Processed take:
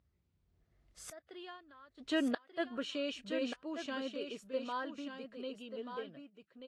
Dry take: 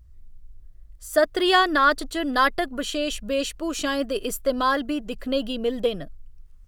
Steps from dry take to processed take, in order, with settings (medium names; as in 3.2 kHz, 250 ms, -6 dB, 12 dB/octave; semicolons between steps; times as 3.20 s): Doppler pass-by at 1.36 s, 15 m/s, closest 1.5 m; inverted gate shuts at -32 dBFS, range -40 dB; band-pass 160–4000 Hz; delay 1185 ms -8 dB; trim +13 dB; Vorbis 48 kbps 32 kHz